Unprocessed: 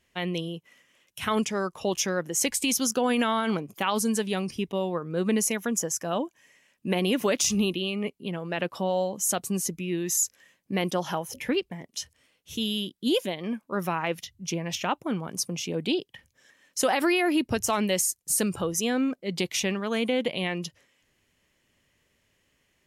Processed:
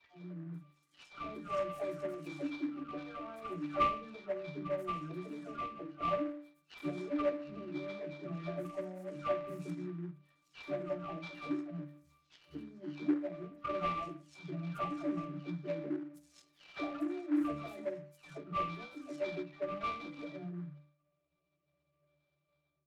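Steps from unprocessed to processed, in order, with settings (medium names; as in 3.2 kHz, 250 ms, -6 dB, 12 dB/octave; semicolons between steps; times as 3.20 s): delay that grows with frequency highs early, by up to 634 ms; touch-sensitive phaser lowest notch 250 Hz, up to 3.7 kHz, full sweep at -32 dBFS; level rider gain up to 11.5 dB; flange 0.2 Hz, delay 5.5 ms, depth 9.7 ms, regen -33%; harmonic-percussive split harmonic -8 dB; reverberation RT60 0.35 s, pre-delay 3 ms, DRR -5 dB; compression 3:1, threshold -9 dBFS, peak gain reduction 14.5 dB; pre-emphasis filter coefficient 0.9; pitch-class resonator D, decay 0.43 s; delay time shaken by noise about 1.2 kHz, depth 0.036 ms; trim +9.5 dB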